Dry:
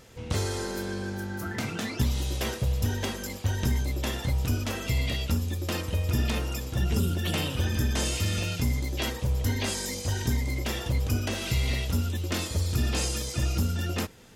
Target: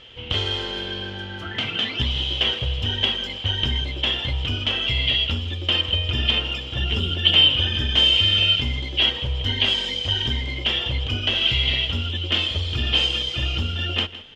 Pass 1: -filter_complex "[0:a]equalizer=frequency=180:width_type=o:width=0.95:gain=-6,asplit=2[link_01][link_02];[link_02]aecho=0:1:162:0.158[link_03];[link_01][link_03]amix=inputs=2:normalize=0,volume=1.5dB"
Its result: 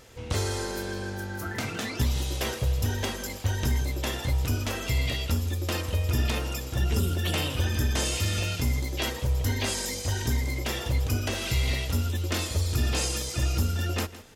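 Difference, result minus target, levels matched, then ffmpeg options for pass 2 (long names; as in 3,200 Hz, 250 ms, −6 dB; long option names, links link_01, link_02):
4,000 Hz band −9.0 dB
-filter_complex "[0:a]lowpass=frequency=3100:width_type=q:width=16,equalizer=frequency=180:width_type=o:width=0.95:gain=-6,asplit=2[link_01][link_02];[link_02]aecho=0:1:162:0.158[link_03];[link_01][link_03]amix=inputs=2:normalize=0,volume=1.5dB"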